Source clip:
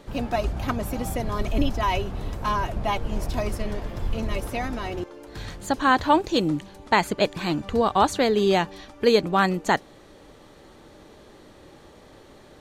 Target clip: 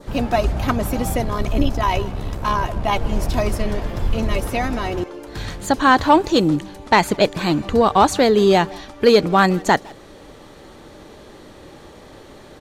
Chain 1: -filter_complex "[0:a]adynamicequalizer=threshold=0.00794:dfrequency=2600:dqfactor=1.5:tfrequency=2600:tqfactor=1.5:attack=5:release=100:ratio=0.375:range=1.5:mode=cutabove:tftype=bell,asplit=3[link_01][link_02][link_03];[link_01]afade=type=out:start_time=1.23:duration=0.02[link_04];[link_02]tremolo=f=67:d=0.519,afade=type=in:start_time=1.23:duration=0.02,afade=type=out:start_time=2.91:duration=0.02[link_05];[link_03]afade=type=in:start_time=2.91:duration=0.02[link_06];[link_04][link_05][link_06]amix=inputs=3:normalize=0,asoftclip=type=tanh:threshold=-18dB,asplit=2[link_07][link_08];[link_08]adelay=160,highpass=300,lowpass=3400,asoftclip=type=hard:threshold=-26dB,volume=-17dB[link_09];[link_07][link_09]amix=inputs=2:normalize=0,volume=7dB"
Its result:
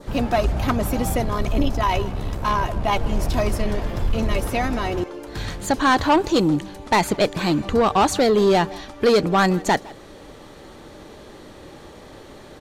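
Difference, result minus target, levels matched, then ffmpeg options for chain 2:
soft clipping: distortion +11 dB
-filter_complex "[0:a]adynamicequalizer=threshold=0.00794:dfrequency=2600:dqfactor=1.5:tfrequency=2600:tqfactor=1.5:attack=5:release=100:ratio=0.375:range=1.5:mode=cutabove:tftype=bell,asplit=3[link_01][link_02][link_03];[link_01]afade=type=out:start_time=1.23:duration=0.02[link_04];[link_02]tremolo=f=67:d=0.519,afade=type=in:start_time=1.23:duration=0.02,afade=type=out:start_time=2.91:duration=0.02[link_05];[link_03]afade=type=in:start_time=2.91:duration=0.02[link_06];[link_04][link_05][link_06]amix=inputs=3:normalize=0,asoftclip=type=tanh:threshold=-9dB,asplit=2[link_07][link_08];[link_08]adelay=160,highpass=300,lowpass=3400,asoftclip=type=hard:threshold=-26dB,volume=-17dB[link_09];[link_07][link_09]amix=inputs=2:normalize=0,volume=7dB"

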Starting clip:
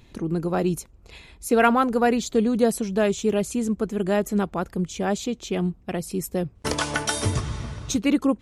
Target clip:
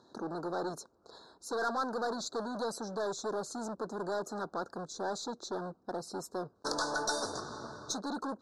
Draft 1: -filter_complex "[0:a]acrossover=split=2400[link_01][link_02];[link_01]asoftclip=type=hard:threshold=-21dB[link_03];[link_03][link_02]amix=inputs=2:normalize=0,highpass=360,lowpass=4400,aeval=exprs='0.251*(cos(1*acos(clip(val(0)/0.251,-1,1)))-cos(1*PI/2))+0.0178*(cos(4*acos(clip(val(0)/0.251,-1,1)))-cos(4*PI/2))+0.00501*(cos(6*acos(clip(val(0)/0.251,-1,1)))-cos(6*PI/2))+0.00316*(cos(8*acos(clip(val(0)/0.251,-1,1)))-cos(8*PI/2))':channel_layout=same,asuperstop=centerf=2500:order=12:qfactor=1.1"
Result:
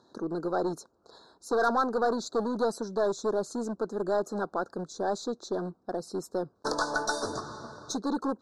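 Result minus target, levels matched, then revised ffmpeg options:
hard clipping: distortion −5 dB
-filter_complex "[0:a]acrossover=split=2400[link_01][link_02];[link_01]asoftclip=type=hard:threshold=-30.5dB[link_03];[link_03][link_02]amix=inputs=2:normalize=0,highpass=360,lowpass=4400,aeval=exprs='0.251*(cos(1*acos(clip(val(0)/0.251,-1,1)))-cos(1*PI/2))+0.0178*(cos(4*acos(clip(val(0)/0.251,-1,1)))-cos(4*PI/2))+0.00501*(cos(6*acos(clip(val(0)/0.251,-1,1)))-cos(6*PI/2))+0.00316*(cos(8*acos(clip(val(0)/0.251,-1,1)))-cos(8*PI/2))':channel_layout=same,asuperstop=centerf=2500:order=12:qfactor=1.1"

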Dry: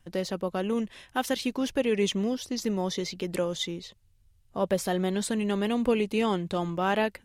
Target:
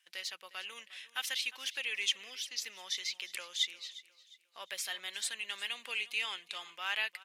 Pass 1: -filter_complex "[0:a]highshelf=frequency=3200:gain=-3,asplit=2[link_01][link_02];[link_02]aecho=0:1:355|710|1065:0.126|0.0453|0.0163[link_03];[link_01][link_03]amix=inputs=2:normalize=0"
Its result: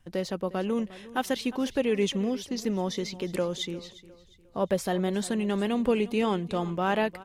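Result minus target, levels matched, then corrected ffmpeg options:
2,000 Hz band −8.0 dB
-filter_complex "[0:a]highpass=frequency=2400:width_type=q:width=1.5,highshelf=frequency=3200:gain=-3,asplit=2[link_01][link_02];[link_02]aecho=0:1:355|710|1065:0.126|0.0453|0.0163[link_03];[link_01][link_03]amix=inputs=2:normalize=0"

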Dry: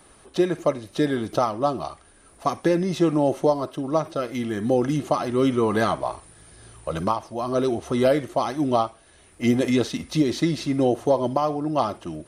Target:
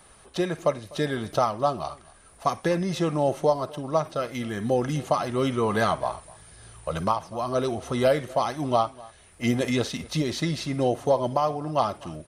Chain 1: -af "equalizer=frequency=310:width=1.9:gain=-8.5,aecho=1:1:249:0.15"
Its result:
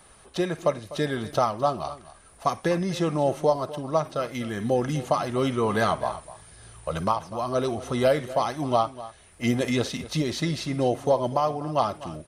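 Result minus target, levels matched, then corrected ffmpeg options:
echo-to-direct +6 dB
-af "equalizer=frequency=310:width=1.9:gain=-8.5,aecho=1:1:249:0.075"

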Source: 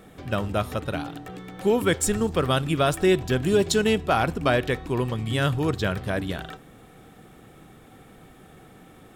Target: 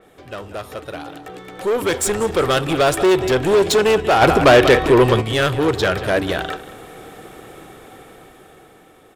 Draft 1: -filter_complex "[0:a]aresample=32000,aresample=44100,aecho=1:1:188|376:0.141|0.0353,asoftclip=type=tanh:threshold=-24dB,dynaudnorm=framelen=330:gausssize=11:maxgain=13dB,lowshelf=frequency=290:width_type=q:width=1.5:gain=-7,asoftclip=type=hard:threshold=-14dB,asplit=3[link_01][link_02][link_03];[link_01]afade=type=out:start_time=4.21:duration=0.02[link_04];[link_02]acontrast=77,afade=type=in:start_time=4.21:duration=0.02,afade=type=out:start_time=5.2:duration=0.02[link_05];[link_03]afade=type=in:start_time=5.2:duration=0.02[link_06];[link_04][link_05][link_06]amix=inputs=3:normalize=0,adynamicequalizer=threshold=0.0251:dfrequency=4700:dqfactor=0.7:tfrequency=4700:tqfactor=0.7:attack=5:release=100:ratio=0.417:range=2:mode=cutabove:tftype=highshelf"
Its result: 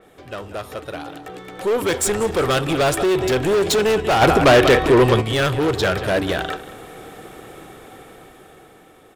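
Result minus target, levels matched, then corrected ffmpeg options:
hard clipping: distortion +17 dB
-filter_complex "[0:a]aresample=32000,aresample=44100,aecho=1:1:188|376:0.141|0.0353,asoftclip=type=tanh:threshold=-24dB,dynaudnorm=framelen=330:gausssize=11:maxgain=13dB,lowshelf=frequency=290:width_type=q:width=1.5:gain=-7,asoftclip=type=hard:threshold=-8dB,asplit=3[link_01][link_02][link_03];[link_01]afade=type=out:start_time=4.21:duration=0.02[link_04];[link_02]acontrast=77,afade=type=in:start_time=4.21:duration=0.02,afade=type=out:start_time=5.2:duration=0.02[link_05];[link_03]afade=type=in:start_time=5.2:duration=0.02[link_06];[link_04][link_05][link_06]amix=inputs=3:normalize=0,adynamicequalizer=threshold=0.0251:dfrequency=4700:dqfactor=0.7:tfrequency=4700:tqfactor=0.7:attack=5:release=100:ratio=0.417:range=2:mode=cutabove:tftype=highshelf"

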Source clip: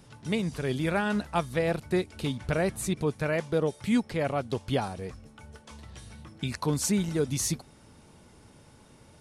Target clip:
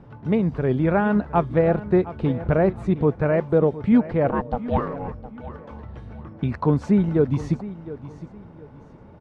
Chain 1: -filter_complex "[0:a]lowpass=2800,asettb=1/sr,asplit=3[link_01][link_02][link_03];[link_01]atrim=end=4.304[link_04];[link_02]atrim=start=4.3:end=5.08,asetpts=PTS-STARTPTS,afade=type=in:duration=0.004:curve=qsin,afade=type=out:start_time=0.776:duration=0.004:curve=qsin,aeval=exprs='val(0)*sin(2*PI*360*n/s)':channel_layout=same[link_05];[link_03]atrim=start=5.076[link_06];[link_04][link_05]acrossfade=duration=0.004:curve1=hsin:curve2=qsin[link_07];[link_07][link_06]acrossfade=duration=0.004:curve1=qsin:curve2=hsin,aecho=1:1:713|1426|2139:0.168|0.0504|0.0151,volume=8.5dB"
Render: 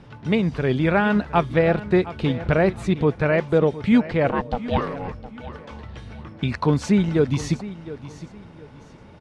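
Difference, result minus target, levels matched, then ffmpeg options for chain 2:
2,000 Hz band +6.0 dB
-filter_complex "[0:a]lowpass=1200,asettb=1/sr,asplit=3[link_01][link_02][link_03];[link_01]atrim=end=4.304[link_04];[link_02]atrim=start=4.3:end=5.08,asetpts=PTS-STARTPTS,afade=type=in:duration=0.004:curve=qsin,afade=type=out:start_time=0.776:duration=0.004:curve=qsin,aeval=exprs='val(0)*sin(2*PI*360*n/s)':channel_layout=same[link_05];[link_03]atrim=start=5.076[link_06];[link_04][link_05]acrossfade=duration=0.004:curve1=hsin:curve2=qsin[link_07];[link_07][link_06]acrossfade=duration=0.004:curve1=qsin:curve2=hsin,aecho=1:1:713|1426|2139:0.168|0.0504|0.0151,volume=8.5dB"

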